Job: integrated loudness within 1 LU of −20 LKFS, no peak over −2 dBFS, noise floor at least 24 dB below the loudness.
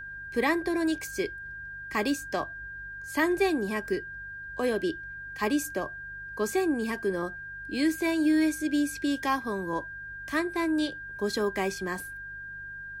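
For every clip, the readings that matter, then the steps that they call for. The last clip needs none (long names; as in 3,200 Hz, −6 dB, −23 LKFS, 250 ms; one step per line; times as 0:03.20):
mains hum 50 Hz; hum harmonics up to 150 Hz; level of the hum −53 dBFS; interfering tone 1,600 Hz; level of the tone −38 dBFS; integrated loudness −30.0 LKFS; sample peak −13.5 dBFS; target loudness −20.0 LKFS
→ hum removal 50 Hz, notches 3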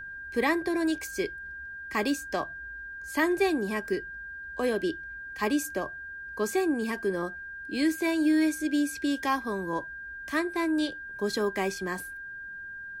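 mains hum none found; interfering tone 1,600 Hz; level of the tone −38 dBFS
→ notch filter 1,600 Hz, Q 30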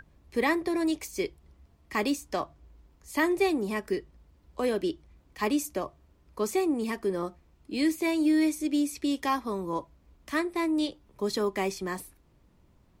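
interfering tone none found; integrated loudness −29.5 LKFS; sample peak −13.5 dBFS; target loudness −20.0 LKFS
→ level +9.5 dB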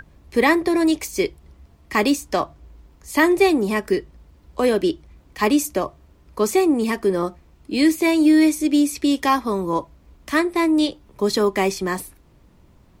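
integrated loudness −20.0 LKFS; sample peak −4.0 dBFS; background noise floor −54 dBFS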